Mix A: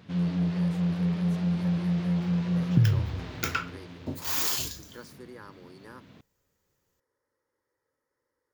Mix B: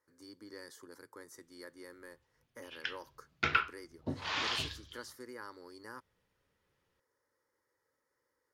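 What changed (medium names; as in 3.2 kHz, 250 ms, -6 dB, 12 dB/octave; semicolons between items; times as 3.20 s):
first sound: muted; second sound: add low-pass 3.7 kHz 24 dB/octave; master: add tilt shelf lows -3 dB, about 880 Hz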